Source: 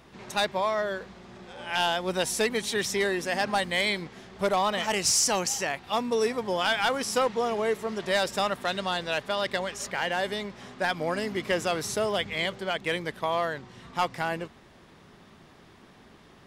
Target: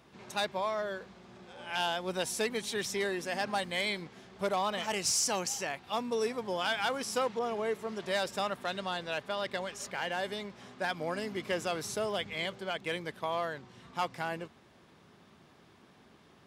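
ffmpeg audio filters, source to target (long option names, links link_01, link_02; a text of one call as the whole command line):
ffmpeg -i in.wav -filter_complex "[0:a]highpass=73,bandreject=frequency=1900:width=22,asettb=1/sr,asplit=3[link_01][link_02][link_03];[link_01]atrim=end=7.394[link_04];[link_02]atrim=start=7.39:end=9.58,asetpts=PTS-STARTPTS,afade=type=in:duration=0.004:curve=qsin,afade=type=out:start_time=2.186:duration=0.004:curve=qsin,adynamicequalizer=threshold=0.0112:dfrequency=3200:dqfactor=0.7:tfrequency=3200:tqfactor=0.7:attack=5:release=100:ratio=0.375:range=1.5:mode=cutabove:tftype=highshelf[link_05];[link_03]atrim=start=9.576[link_06];[link_04][link_05]acrossfade=duration=0.004:curve1=hsin:curve2=qsin[link_07];[link_07][link_06]acrossfade=duration=0.004:curve1=qsin:curve2=hsin,volume=-6dB" out.wav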